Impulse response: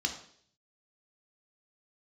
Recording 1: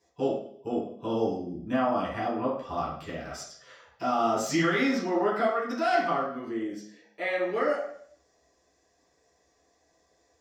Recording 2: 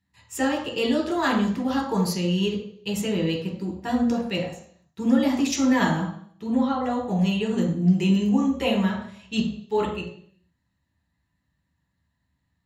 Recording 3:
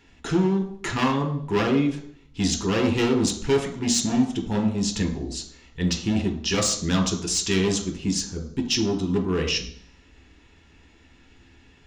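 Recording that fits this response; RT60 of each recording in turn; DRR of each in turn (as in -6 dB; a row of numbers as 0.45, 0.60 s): 3; 0.60, 0.60, 0.60 s; -7.5, -1.0, 3.5 dB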